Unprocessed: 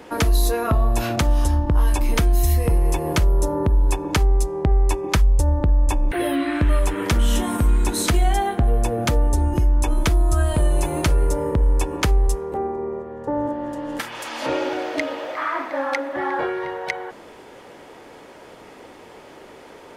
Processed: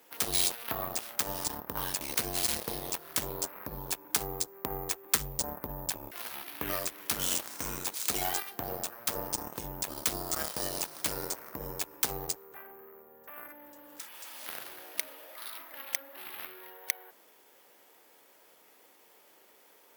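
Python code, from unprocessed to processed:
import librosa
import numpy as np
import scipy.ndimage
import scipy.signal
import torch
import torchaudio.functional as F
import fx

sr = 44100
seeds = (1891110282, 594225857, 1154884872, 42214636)

y = np.repeat(x[::3], 3)[:len(x)]
y = fx.cheby_harmonics(y, sr, harmonics=(3, 7), levels_db=(-9, -29), full_scale_db=-8.5)
y = fx.riaa(y, sr, side='recording')
y = y * 10.0 ** (-9.0 / 20.0)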